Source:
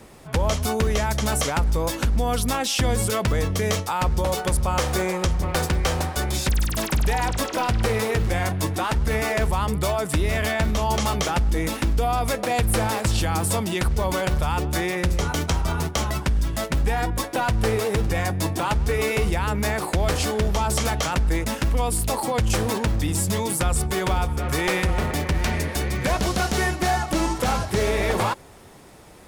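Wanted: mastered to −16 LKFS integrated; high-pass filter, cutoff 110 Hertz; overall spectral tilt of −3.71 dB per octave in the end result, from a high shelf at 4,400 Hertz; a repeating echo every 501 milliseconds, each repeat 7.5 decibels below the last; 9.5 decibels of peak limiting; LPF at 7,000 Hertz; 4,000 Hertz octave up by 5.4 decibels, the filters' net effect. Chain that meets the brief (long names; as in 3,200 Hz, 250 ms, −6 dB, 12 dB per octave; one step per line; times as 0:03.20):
high-pass filter 110 Hz
low-pass filter 7,000 Hz
parametric band 4,000 Hz +5.5 dB
high-shelf EQ 4,400 Hz +3.5 dB
brickwall limiter −15.5 dBFS
repeating echo 501 ms, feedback 42%, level −7.5 dB
level +9 dB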